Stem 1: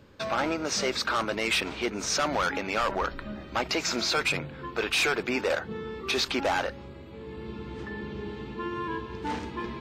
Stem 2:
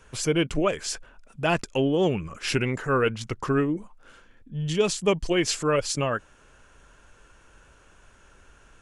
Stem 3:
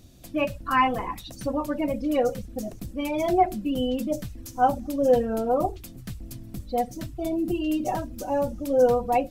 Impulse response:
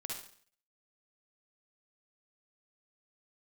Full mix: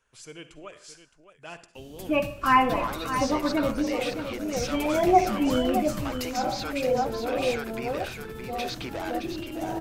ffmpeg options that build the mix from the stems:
-filter_complex "[0:a]acompressor=threshold=-32dB:ratio=2.5,adelay=2500,volume=-3.5dB,asplit=2[a][b];[b]volume=-7dB[c];[1:a]lowshelf=f=460:g=-9,volume=-18dB,asplit=4[d][e][f][g];[e]volume=-6.5dB[h];[f]volume=-10dB[i];[2:a]adelay=1750,volume=-1.5dB,asplit=3[j][k][l];[k]volume=-4dB[m];[l]volume=-6.5dB[n];[g]apad=whole_len=487324[o];[j][o]sidechaingate=range=-33dB:threshold=-58dB:ratio=16:detection=peak[p];[3:a]atrim=start_sample=2205[q];[h][m]amix=inputs=2:normalize=0[r];[r][q]afir=irnorm=-1:irlink=0[s];[c][i][n]amix=inputs=3:normalize=0,aecho=0:1:617:1[t];[a][d][p][s][t]amix=inputs=5:normalize=0"

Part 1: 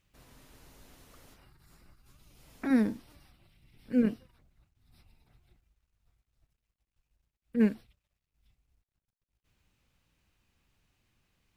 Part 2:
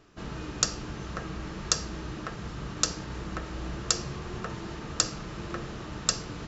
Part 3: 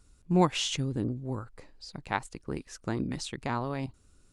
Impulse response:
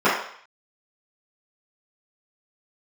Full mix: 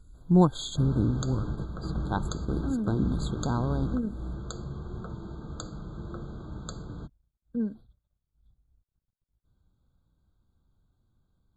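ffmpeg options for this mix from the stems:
-filter_complex "[0:a]acontrast=37,volume=-10.5dB[a];[1:a]bandreject=f=125.3:t=h:w=4,bandreject=f=250.6:t=h:w=4,adelay=600,volume=-3dB[b];[2:a]volume=-2.5dB,asplit=2[c][d];[d]apad=whole_len=312107[e];[b][e]sidechaingate=range=-6dB:threshold=-51dB:ratio=16:detection=peak[f];[a][f]amix=inputs=2:normalize=0,aemphasis=mode=reproduction:type=cd,acompressor=threshold=-33dB:ratio=6,volume=0dB[g];[c][g]amix=inputs=2:normalize=0,lowshelf=f=310:g=11,afftfilt=real='re*eq(mod(floor(b*sr/1024/1600),2),0)':imag='im*eq(mod(floor(b*sr/1024/1600),2),0)':win_size=1024:overlap=0.75"

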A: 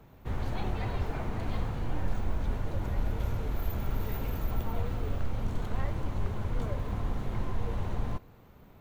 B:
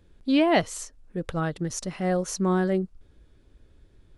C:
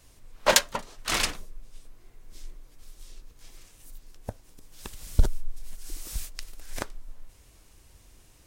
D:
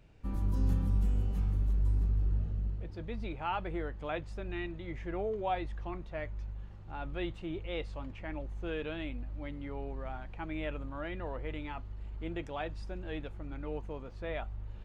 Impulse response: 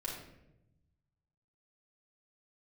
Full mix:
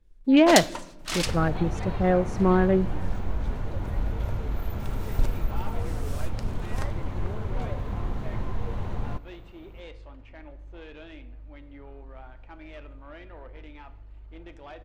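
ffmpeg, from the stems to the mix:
-filter_complex "[0:a]adelay=1000,volume=1.5dB[a];[1:a]afwtdn=0.0141,volume=3dB,asplit=2[b][c];[c]volume=-20dB[d];[2:a]agate=range=-17dB:threshold=-44dB:ratio=16:detection=peak,adynamicequalizer=threshold=0.00794:dfrequency=2800:dqfactor=0.7:tfrequency=2800:tqfactor=0.7:attack=5:release=100:ratio=0.375:range=3:mode=boostabove:tftype=highshelf,volume=-7.5dB,asplit=2[e][f];[f]volume=-7.5dB[g];[3:a]asoftclip=type=tanh:threshold=-33dB,equalizer=f=150:w=0.76:g=-7.5,adelay=2100,volume=-4.5dB,asplit=2[h][i];[i]volume=-8.5dB[j];[4:a]atrim=start_sample=2205[k];[d][g][j]amix=inputs=3:normalize=0[l];[l][k]afir=irnorm=-1:irlink=0[m];[a][b][e][h][m]amix=inputs=5:normalize=0,highshelf=f=7.4k:g=-7.5"

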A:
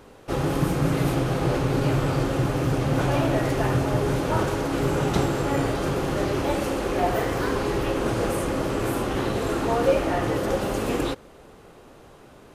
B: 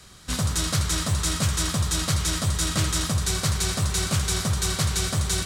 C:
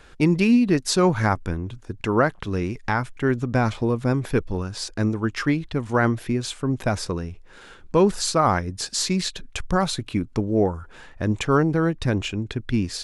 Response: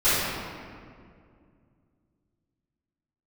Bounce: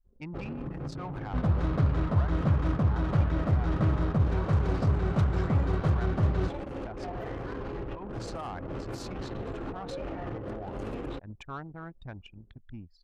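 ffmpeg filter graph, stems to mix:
-filter_complex "[0:a]alimiter=limit=-16dB:level=0:latency=1:release=56,adelay=50,volume=-6dB[a];[1:a]lowpass=1k,adelay=1050,volume=0dB[b];[2:a]lowpass=8k,lowshelf=f=580:t=q:w=3:g=-6.5,asoftclip=type=tanh:threshold=-14dB,volume=-16dB,asplit=2[c][d];[d]apad=whole_len=555366[e];[a][e]sidechaincompress=threshold=-46dB:ratio=8:attack=24:release=286[f];[f][c]amix=inputs=2:normalize=0,lowshelf=f=150:g=7,acompressor=threshold=-32dB:ratio=12,volume=0dB[g];[b][g]amix=inputs=2:normalize=0,anlmdn=0.398"

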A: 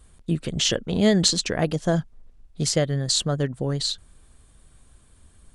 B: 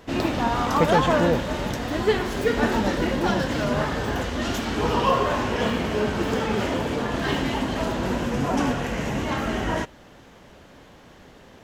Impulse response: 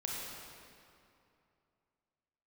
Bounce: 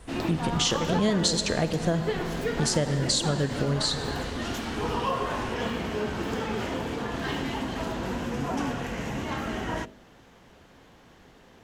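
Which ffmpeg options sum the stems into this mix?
-filter_complex "[0:a]volume=0.5dB,asplit=2[a][b];[b]volume=-9.5dB[c];[1:a]bandreject=f=590:w=16,bandreject=f=49.93:t=h:w=4,bandreject=f=99.86:t=h:w=4,bandreject=f=149.79:t=h:w=4,bandreject=f=199.72:t=h:w=4,bandreject=f=249.65:t=h:w=4,bandreject=f=299.58:t=h:w=4,bandreject=f=349.51:t=h:w=4,bandreject=f=399.44:t=h:w=4,bandreject=f=449.37:t=h:w=4,bandreject=f=499.3:t=h:w=4,bandreject=f=549.23:t=h:w=4,bandreject=f=599.16:t=h:w=4,bandreject=f=649.09:t=h:w=4,volume=-5dB[d];[2:a]atrim=start_sample=2205[e];[c][e]afir=irnorm=-1:irlink=0[f];[a][d][f]amix=inputs=3:normalize=0,acompressor=threshold=-24dB:ratio=2.5"

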